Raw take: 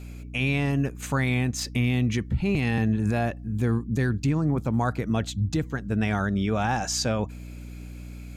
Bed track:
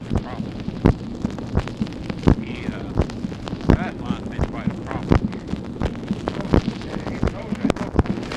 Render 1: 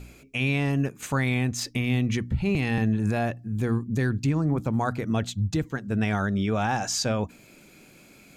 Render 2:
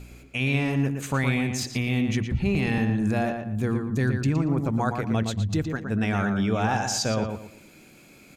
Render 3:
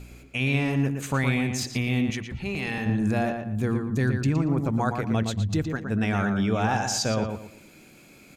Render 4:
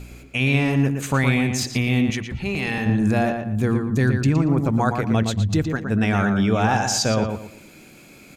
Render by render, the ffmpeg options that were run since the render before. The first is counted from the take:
-af "bandreject=f=60:t=h:w=4,bandreject=f=120:t=h:w=4,bandreject=f=180:t=h:w=4,bandreject=f=240:t=h:w=4,bandreject=f=300:t=h:w=4"
-filter_complex "[0:a]asplit=2[s0][s1];[s1]adelay=116,lowpass=f=3400:p=1,volume=0.531,asplit=2[s2][s3];[s3]adelay=116,lowpass=f=3400:p=1,volume=0.3,asplit=2[s4][s5];[s5]adelay=116,lowpass=f=3400:p=1,volume=0.3,asplit=2[s6][s7];[s7]adelay=116,lowpass=f=3400:p=1,volume=0.3[s8];[s0][s2][s4][s6][s8]amix=inputs=5:normalize=0"
-filter_complex "[0:a]asettb=1/sr,asplit=3[s0][s1][s2];[s0]atrim=end=2.104[s3];[s1]atrim=start=2.1:end=2.86,asetpts=PTS-STARTPTS,afade=t=in:d=0.004:c=qsin,afade=t=out:st=0.756:d=0.004:c=qsin,lowshelf=f=430:g=-10[s4];[s2]atrim=start=2.856[s5];[s3][s4]acrossfade=d=0.004:c1=hsin:c2=qsin[s6];[s6][s5]acrossfade=d=0.004:c1=qsin:c2=hsin"
-af "volume=1.78"

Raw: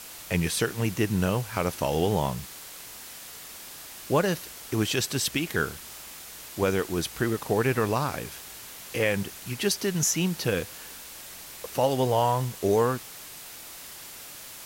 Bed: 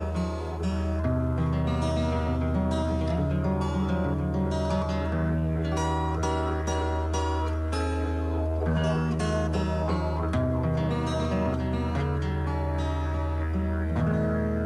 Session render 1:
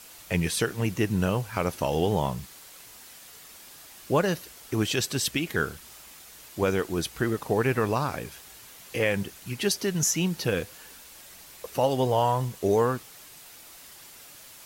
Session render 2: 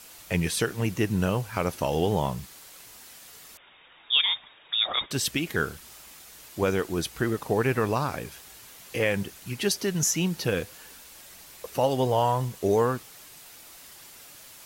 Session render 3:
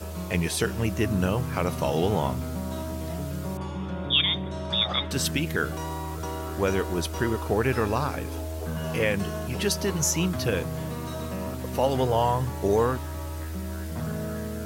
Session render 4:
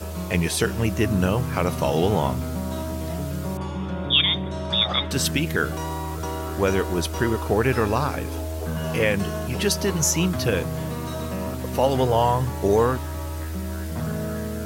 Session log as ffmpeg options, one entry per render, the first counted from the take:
-af "afftdn=nr=6:nf=-43"
-filter_complex "[0:a]asettb=1/sr,asplit=3[s0][s1][s2];[s0]atrim=end=3.574[s3];[s1]atrim=start=3.57:end=5.11,asetpts=PTS-STARTPTS,afade=t=in:d=0.004:c=qsin,afade=t=out:st=1.536:d=0.004:c=qsin,lowpass=f=3200:t=q:w=0.5098,lowpass=f=3200:t=q:w=0.6013,lowpass=f=3200:t=q:w=0.9,lowpass=f=3200:t=q:w=2.563,afreqshift=-3800[s4];[s2]atrim=start=5.106[s5];[s3][s4]acrossfade=d=0.004:c1=hsin:c2=qsin[s6];[s6][s5]acrossfade=d=0.004:c1=qsin:c2=hsin"
-filter_complex "[1:a]volume=0.501[s0];[0:a][s0]amix=inputs=2:normalize=0"
-af "volume=1.5"

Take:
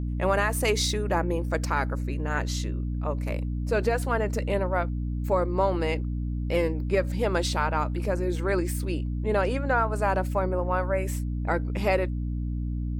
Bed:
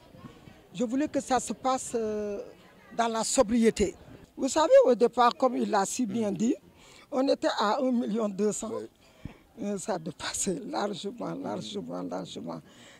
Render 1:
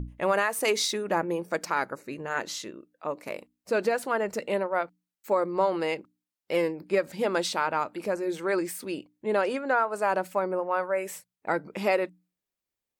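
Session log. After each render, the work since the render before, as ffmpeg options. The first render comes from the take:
-af "bandreject=f=60:t=h:w=6,bandreject=f=120:t=h:w=6,bandreject=f=180:t=h:w=6,bandreject=f=240:t=h:w=6,bandreject=f=300:t=h:w=6"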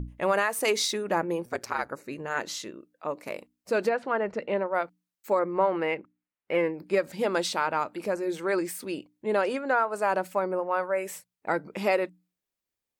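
-filter_complex "[0:a]asettb=1/sr,asplit=3[s0][s1][s2];[s0]atrim=end=1.454[s3];[s1]atrim=start=1.45:end=1.89,asetpts=PTS-STARTPTS,afade=t=in:d=0.004:c=qsin,afade=t=out:st=0.436:d=0.004:c=qsin,aeval=exprs='val(0)*sin(2*PI*61*n/s)':c=same[s4];[s2]atrim=start=1.886[s5];[s3][s4]acrossfade=d=0.004:c1=hsin:c2=qsin[s6];[s6][s5]acrossfade=d=0.004:c1=qsin:c2=hsin,asettb=1/sr,asplit=3[s7][s8][s9];[s7]atrim=end=3.894[s10];[s8]atrim=start=3.89:end=4.74,asetpts=PTS-STARTPTS,afade=t=in:d=0.004:c=qsin,afade=t=out:st=0.846:d=0.004:c=qsin,lowpass=2700[s11];[s9]atrim=start=4.736[s12];[s10][s11]acrossfade=d=0.004:c1=hsin:c2=qsin[s13];[s13][s12]acrossfade=d=0.004:c1=qsin:c2=hsin,asettb=1/sr,asplit=3[s14][s15][s16];[s14]atrim=end=5.394[s17];[s15]atrim=start=5.39:end=6.74,asetpts=PTS-STARTPTS,afade=t=in:d=0.004:c=qsin,afade=t=out:st=1.346:d=0.004:c=qsin,highshelf=f=3300:t=q:w=1.5:g=-13.5[s18];[s16]atrim=start=6.736[s19];[s17][s18]acrossfade=d=0.004:c1=hsin:c2=qsin[s20];[s20][s19]acrossfade=d=0.004:c1=qsin:c2=hsin"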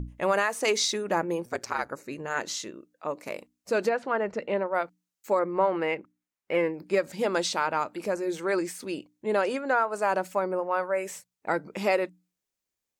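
-filter_complex "[0:a]acrossover=split=7800[s0][s1];[s1]acompressor=threshold=0.00447:ratio=4:attack=1:release=60[s2];[s0][s2]amix=inputs=2:normalize=0,equalizer=f=6600:w=1.8:g=5"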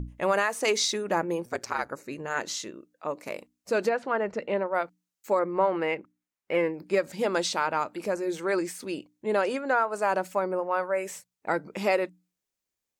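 -af anull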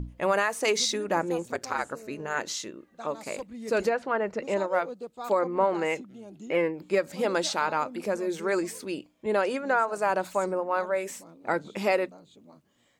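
-filter_complex "[1:a]volume=0.158[s0];[0:a][s0]amix=inputs=2:normalize=0"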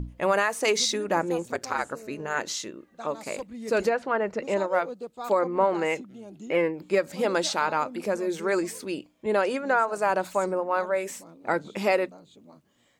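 -af "volume=1.19"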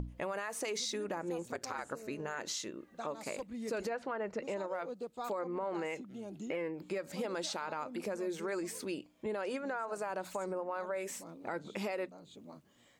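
-af "alimiter=limit=0.1:level=0:latency=1:release=76,acompressor=threshold=0.00891:ratio=2"

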